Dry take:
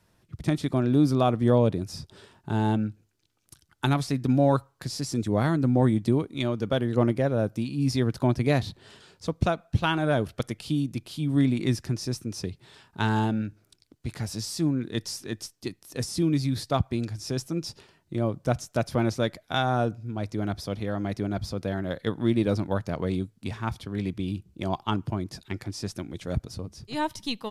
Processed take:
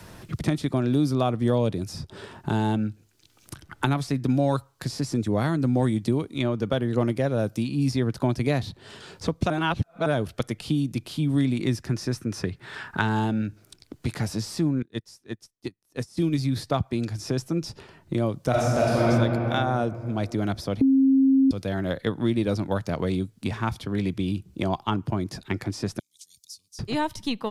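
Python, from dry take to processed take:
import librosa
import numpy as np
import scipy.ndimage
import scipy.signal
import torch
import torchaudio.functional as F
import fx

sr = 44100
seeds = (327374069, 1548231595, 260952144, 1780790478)

y = fx.peak_eq(x, sr, hz=1600.0, db=fx.line((11.86, 4.5), (13.0, 12.5)), octaves=1.0, at=(11.86, 13.0), fade=0.02)
y = fx.upward_expand(y, sr, threshold_db=-43.0, expansion=2.5, at=(14.82, 16.38))
y = fx.reverb_throw(y, sr, start_s=18.49, length_s=0.59, rt60_s=2.2, drr_db=-8.0)
y = fx.cheby2_highpass(y, sr, hz=1600.0, order=4, stop_db=60, at=(25.99, 26.79))
y = fx.edit(y, sr, fx.reverse_span(start_s=9.5, length_s=0.56),
    fx.bleep(start_s=20.81, length_s=0.7, hz=268.0, db=-12.0), tone=tone)
y = fx.band_squash(y, sr, depth_pct=70)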